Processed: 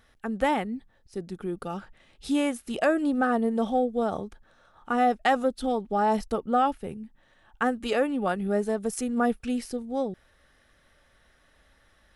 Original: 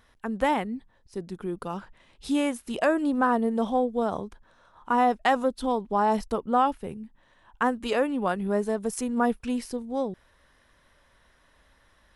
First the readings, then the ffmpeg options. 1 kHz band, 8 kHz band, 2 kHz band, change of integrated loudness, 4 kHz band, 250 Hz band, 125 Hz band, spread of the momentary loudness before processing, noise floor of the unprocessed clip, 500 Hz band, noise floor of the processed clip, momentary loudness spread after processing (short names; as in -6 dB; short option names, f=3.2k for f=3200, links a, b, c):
-1.0 dB, 0.0 dB, 0.0 dB, -0.5 dB, 0.0 dB, 0.0 dB, 0.0 dB, 14 LU, -63 dBFS, 0.0 dB, -63 dBFS, 14 LU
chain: -af "asuperstop=centerf=1000:order=4:qfactor=6.1"